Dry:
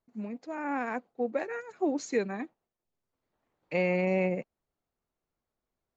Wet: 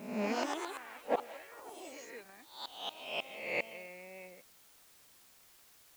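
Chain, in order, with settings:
peak hold with a rise ahead of every peak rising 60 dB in 0.77 s
high-pass filter 1,000 Hz 6 dB per octave
gate with flip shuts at −33 dBFS, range −29 dB
delay with pitch and tempo change per echo 171 ms, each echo +3 semitones, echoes 3
background noise white −75 dBFS
level +12.5 dB

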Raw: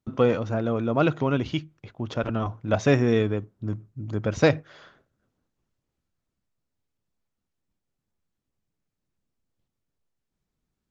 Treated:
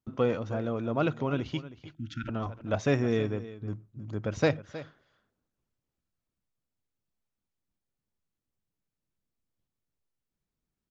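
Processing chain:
single-tap delay 316 ms −15.5 dB
time-frequency box erased 0:01.94–0:02.28, 340–1,300 Hz
level −6 dB

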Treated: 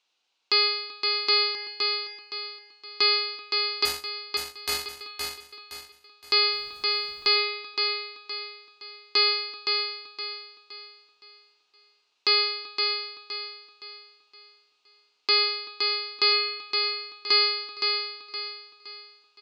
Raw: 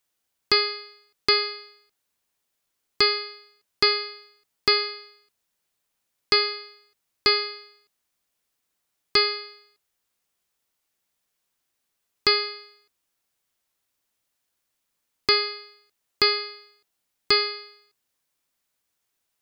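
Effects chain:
in parallel at −1 dB: downward compressor, threshold −29 dBFS, peak gain reduction 13.5 dB
on the sum: loudspeaker in its box 390–5,800 Hz, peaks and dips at 590 Hz −4 dB, 850 Hz +3 dB, 1,800 Hz −7 dB, 2,700 Hz +7 dB, 4,000 Hz +6 dB
slap from a distant wall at 66 metres, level −26 dB
brickwall limiter −11.5 dBFS, peak gain reduction 9.5 dB
0:03.85–0:05.01: power curve on the samples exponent 3
on a send: repeating echo 517 ms, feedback 37%, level −4.5 dB
0:06.51–0:07.42: on the sum: background noise pink −60 dBFS

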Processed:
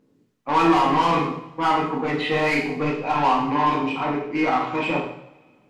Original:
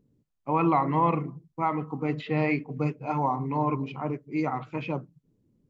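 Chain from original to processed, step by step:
mid-hump overdrive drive 22 dB, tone 3,500 Hz, clips at −12 dBFS
coupled-rooms reverb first 0.66 s, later 2.3 s, from −25 dB, DRR −4 dB
level −4.5 dB

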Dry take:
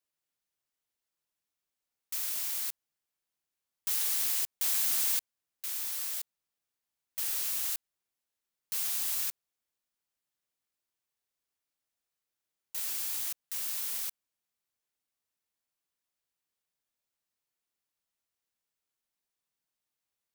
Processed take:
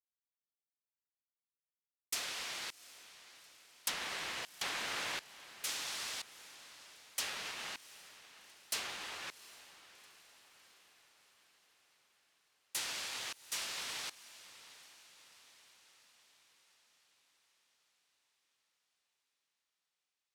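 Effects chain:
treble cut that deepens with the level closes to 2,400 Hz, closed at −28 dBFS
downward expander −45 dBFS
feedback delay with all-pass diffusion 756 ms, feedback 57%, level −16 dB
level +7.5 dB

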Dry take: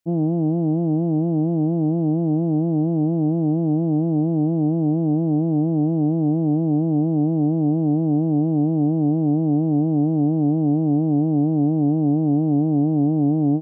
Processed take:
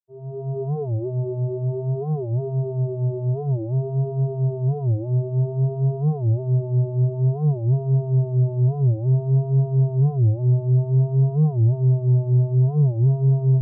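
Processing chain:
fade in at the beginning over 0.61 s
channel vocoder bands 32, square 130 Hz
pitch vibrato 0.55 Hz 63 cents
hum removal 148.2 Hz, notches 7
wow of a warped record 45 rpm, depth 250 cents

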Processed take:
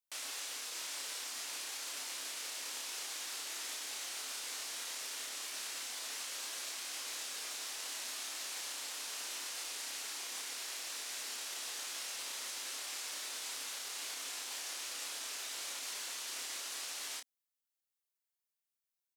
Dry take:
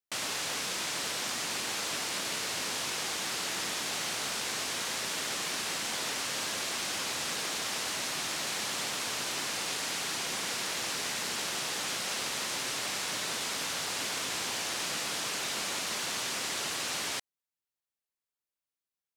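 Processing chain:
elliptic high-pass filter 250 Hz, stop band 50 dB
spectral tilt +2.5 dB per octave
brickwall limiter −27.5 dBFS, peak gain reduction 10 dB
double-tracking delay 30 ms −5 dB
level −7 dB

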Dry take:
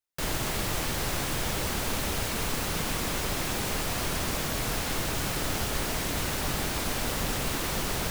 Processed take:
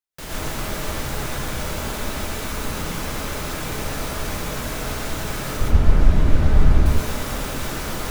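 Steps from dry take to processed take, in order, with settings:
0:05.57–0:06.86: RIAA equalisation playback
dense smooth reverb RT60 0.67 s, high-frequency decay 0.4×, pre-delay 100 ms, DRR −5.5 dB
level −4 dB

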